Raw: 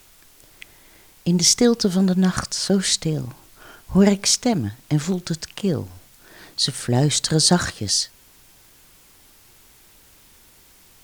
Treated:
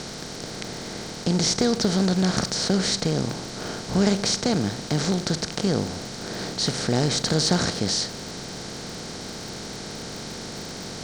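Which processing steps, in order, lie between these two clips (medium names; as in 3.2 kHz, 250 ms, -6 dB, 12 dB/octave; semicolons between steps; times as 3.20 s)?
spectral levelling over time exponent 0.4; low-pass 5.8 kHz 12 dB/octave; crackle 70 per s -24 dBFS; trim -8 dB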